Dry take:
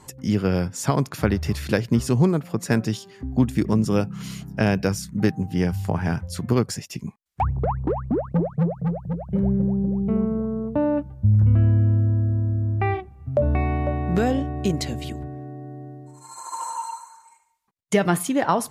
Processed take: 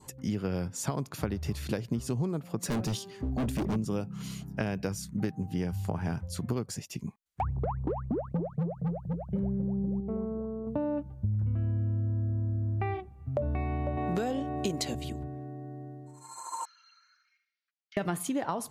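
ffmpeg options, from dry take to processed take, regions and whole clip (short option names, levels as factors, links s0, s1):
-filter_complex "[0:a]asettb=1/sr,asplit=3[s0][s1][s2];[s0]atrim=end=2.634[s3];[s1]atrim=start=2.63:end=3.76,asetpts=PTS-STARTPTS,afade=t=in:d=0.004:c=qsin,afade=t=out:st=1.126:d=0.004:c=qsin,bandreject=f=6900:w=27,acontrast=43,asoftclip=type=hard:threshold=0.0891[s4];[s2]atrim=start=3.756[s5];[s3][s4]acrossfade=d=0.004:c1=hsin:c2=qsin[s6];[s6][s5]acrossfade=d=0.004:c1=qsin:c2=hsin,asettb=1/sr,asplit=3[s7][s8][s9];[s7]atrim=end=10.004[s10];[s8]atrim=start=10:end=10.67,asetpts=PTS-STARTPTS,afade=t=in:d=0.004:c=qsin,afade=t=out:st=0.666:d=0.004:c=qsin,lowpass=1200,equalizer=f=140:w=0.87:g=-10.5[s11];[s9]atrim=start=10.666[s12];[s10][s11]acrossfade=d=0.004:c1=hsin:c2=qsin[s13];[s13][s12]acrossfade=d=0.004:c1=qsin:c2=hsin,asettb=1/sr,asplit=3[s14][s15][s16];[s14]atrim=end=13.974[s17];[s15]atrim=start=13.97:end=14.95,asetpts=PTS-STARTPTS,afade=t=in:d=0.004:c=qsin,afade=t=out:st=0.976:d=0.004:c=qsin,highpass=f=340:p=1,acontrast=85[s18];[s16]atrim=start=14.946[s19];[s17][s18]acrossfade=d=0.004:c1=hsin:c2=qsin[s20];[s20][s19]acrossfade=d=0.004:c1=qsin:c2=hsin,asettb=1/sr,asplit=3[s21][s22][s23];[s21]atrim=end=16.654[s24];[s22]atrim=start=16.65:end=17.97,asetpts=PTS-STARTPTS,afade=t=in:d=0.004:c=qsin,afade=t=out:st=1.316:d=0.004:c=qsin,asuperpass=centerf=2800:order=20:qfactor=0.65,acompressor=threshold=0.002:ratio=2.5:attack=3.2:release=140:knee=1:detection=peak[s25];[s23]atrim=start=17.966[s26];[s24][s25]acrossfade=d=0.004:c1=hsin:c2=qsin[s27];[s27][s26]acrossfade=d=0.004:c1=qsin:c2=hsin,acompressor=threshold=0.0794:ratio=6,adynamicequalizer=threshold=0.00282:dfrequency=1800:dqfactor=1.5:tfrequency=1800:tqfactor=1.5:attack=5:release=100:ratio=0.375:range=2.5:mode=cutabove:tftype=bell,bandreject=f=5300:w=20,volume=0.562"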